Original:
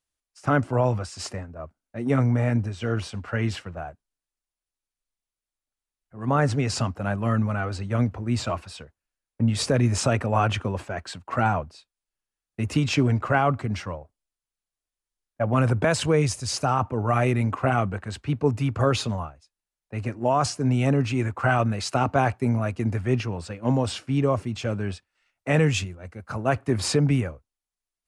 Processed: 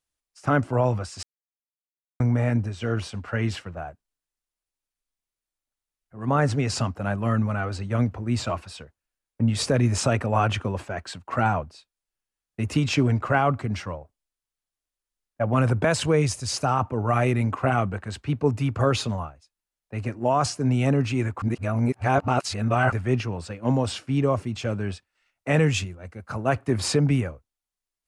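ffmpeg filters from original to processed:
-filter_complex "[0:a]asplit=5[s0][s1][s2][s3][s4];[s0]atrim=end=1.23,asetpts=PTS-STARTPTS,afade=t=out:st=1.226:d=0.004:c=hsin[s5];[s1]atrim=start=1.23:end=2.2,asetpts=PTS-STARTPTS,volume=0[s6];[s2]atrim=start=2.2:end=21.422,asetpts=PTS-STARTPTS,afade=t=in:d=0.004:c=hsin[s7];[s3]atrim=start=21.418:end=22.922,asetpts=PTS-STARTPTS,areverse[s8];[s4]atrim=start=22.918[s9];[s5][s6][s7]concat=n=3:v=0:a=1[s10];[s10][s8]acrossfade=d=0.004:c1=hsin:c2=hsin[s11];[s11][s9]acrossfade=d=0.004:c1=hsin:c2=hsin"

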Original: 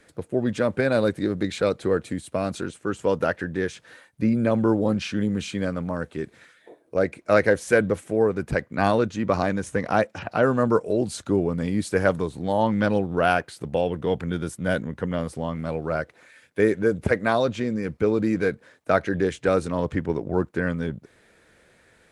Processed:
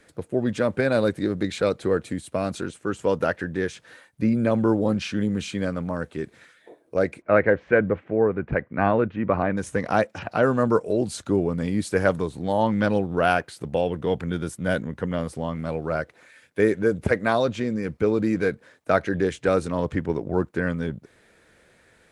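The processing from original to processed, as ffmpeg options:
-filter_complex "[0:a]asplit=3[s0][s1][s2];[s0]afade=t=out:st=7.21:d=0.02[s3];[s1]lowpass=f=2500:w=0.5412,lowpass=f=2500:w=1.3066,afade=t=in:st=7.21:d=0.02,afade=t=out:st=9.56:d=0.02[s4];[s2]afade=t=in:st=9.56:d=0.02[s5];[s3][s4][s5]amix=inputs=3:normalize=0"

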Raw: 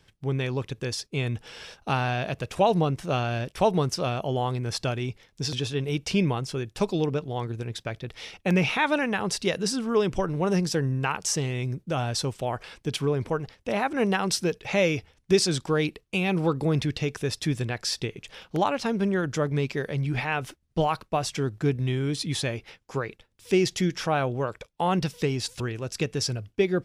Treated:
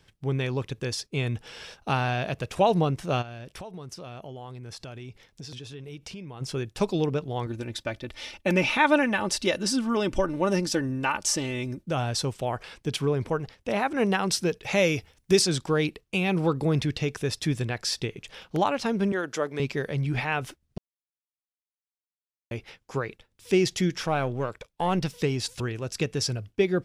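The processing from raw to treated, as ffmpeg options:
-filter_complex "[0:a]asplit=3[s0][s1][s2];[s0]afade=t=out:st=3.21:d=0.02[s3];[s1]acompressor=threshold=0.0126:ratio=6:attack=3.2:release=140:knee=1:detection=peak,afade=t=in:st=3.21:d=0.02,afade=t=out:st=6.4:d=0.02[s4];[s2]afade=t=in:st=6.4:d=0.02[s5];[s3][s4][s5]amix=inputs=3:normalize=0,asettb=1/sr,asplit=3[s6][s7][s8];[s6]atrim=end=7.464[s9];[s7]atrim=start=7.46:end=11.86,asetpts=PTS-STARTPTS,afade=t=in:d=0.004:c=qsin,afade=t=out:st=4.396:d=0.004:c=qsin,aecho=1:1:3.4:0.65,atrim=end_sample=194040[s10];[s8]atrim=start=11.856[s11];[s9][s10]acrossfade=d=0.004:c1=hsin:c2=qsin[s12];[s12][s11]acrossfade=d=0.004:c1=qsin:c2=hsin,asettb=1/sr,asplit=3[s13][s14][s15];[s13]atrim=end=14.634[s16];[s14]atrim=start=14.63:end=15.42,asetpts=PTS-STARTPTS,afade=t=in:d=0.004:c=qsin,afade=t=out:st=0.786:d=0.004:c=qsin,highshelf=f=7300:g=10[s17];[s15]atrim=start=15.416[s18];[s16][s17]acrossfade=d=0.004:c1=hsin:c2=qsin[s19];[s19][s18]acrossfade=d=0.004:c1=qsin:c2=hsin,asettb=1/sr,asplit=3[s20][s21][s22];[s20]atrim=end=19.124[s23];[s21]atrim=start=19.12:end=19.6,asetpts=PTS-STARTPTS,afade=t=in:d=0.004:c=qsin,afade=t=out:st=0.476:d=0.004:c=qsin,highpass=350[s24];[s22]atrim=start=19.596[s25];[s23][s24]acrossfade=d=0.004:c1=hsin:c2=qsin[s26];[s26][s25]acrossfade=d=0.004:c1=qsin:c2=hsin,asettb=1/sr,asplit=3[s27][s28][s29];[s27]atrim=end=24.024[s30];[s28]atrim=start=24.02:end=25.13,asetpts=PTS-STARTPTS,afade=t=in:d=0.004:c=qsin,afade=t=out:st=1.106:d=0.004:c=qsin,aeval=exprs='if(lt(val(0),0),0.708*val(0),val(0))':c=same[s31];[s29]atrim=start=25.126[s32];[s30][s31]acrossfade=d=0.004:c1=hsin:c2=qsin[s33];[s33][s32]acrossfade=d=0.004:c1=qsin:c2=hsin,asplit=3[s34][s35][s36];[s34]atrim=end=20.78,asetpts=PTS-STARTPTS,afade=t=out:st=20.776:d=0.004:c=hsin[s37];[s35]atrim=start=20.78:end=22.51,asetpts=PTS-STARTPTS,volume=0[s38];[s36]atrim=start=22.51,asetpts=PTS-STARTPTS,afade=t=in:d=0.004:c=hsin[s39];[s37][s38][s39]concat=n=3:v=0:a=1"

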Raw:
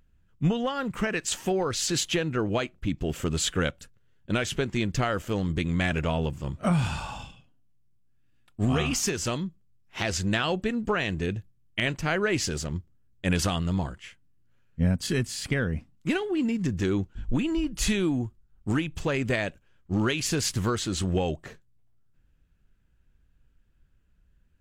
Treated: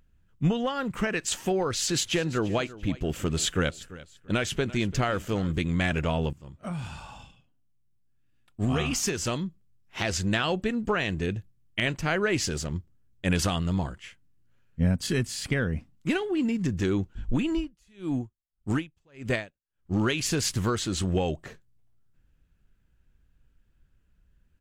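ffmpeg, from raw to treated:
-filter_complex "[0:a]asplit=3[s0][s1][s2];[s0]afade=t=out:st=2.05:d=0.02[s3];[s1]aecho=1:1:341|682:0.126|0.0352,afade=t=in:st=2.05:d=0.02,afade=t=out:st=5.62:d=0.02[s4];[s2]afade=t=in:st=5.62:d=0.02[s5];[s3][s4][s5]amix=inputs=3:normalize=0,asettb=1/sr,asplit=3[s6][s7][s8];[s6]atrim=end=17.564[s9];[s7]atrim=start=17.56:end=19.94,asetpts=PTS-STARTPTS,afade=t=in:d=0.004:c=qsin,afade=t=out:st=2.376:d=0.004:c=qsin,aeval=exprs='val(0)*pow(10,-38*(0.5-0.5*cos(2*PI*1.7*n/s))/20)':c=same[s10];[s8]atrim=start=19.936[s11];[s9][s10]acrossfade=d=0.004:c1=hsin:c2=qsin[s12];[s12][s11]acrossfade=d=0.004:c1=qsin:c2=hsin,asplit=2[s13][s14];[s13]atrim=end=6.33,asetpts=PTS-STARTPTS,afade=t=out:st=6.326:d=0.004:c=hsin:silence=0.199526[s15];[s14]atrim=start=6.33,asetpts=PTS-STARTPTS,afade=t=in:d=3:silence=0.199526[s16];[s15][s16]concat=n=2:v=0:a=1"

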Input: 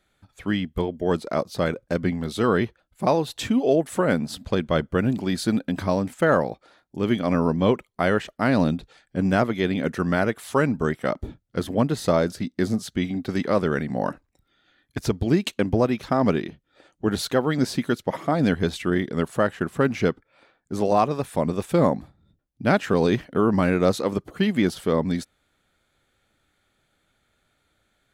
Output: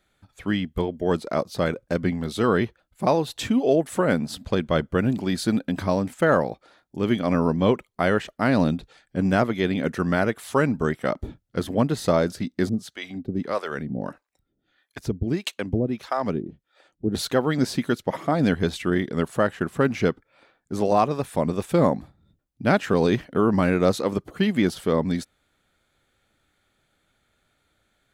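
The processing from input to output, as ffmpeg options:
-filter_complex "[0:a]asettb=1/sr,asplit=3[s0][s1][s2];[s0]atrim=end=12.694[s3];[s1]atrim=start=12.69:end=17.15,asetpts=PTS-STARTPTS,afade=t=in:d=0.004:c=qsin,afade=t=out:st=4.456:d=0.004:c=qsin,acrossover=split=490[s4][s5];[s4]aeval=exprs='val(0)*(1-1/2+1/2*cos(2*PI*1.6*n/s))':c=same[s6];[s5]aeval=exprs='val(0)*(1-1/2-1/2*cos(2*PI*1.6*n/s))':c=same[s7];[s6][s7]amix=inputs=2:normalize=0[s8];[s2]atrim=start=17.146[s9];[s3][s8]acrossfade=d=0.004:c1=hsin:c2=qsin[s10];[s10][s9]acrossfade=d=0.004:c1=qsin:c2=hsin"

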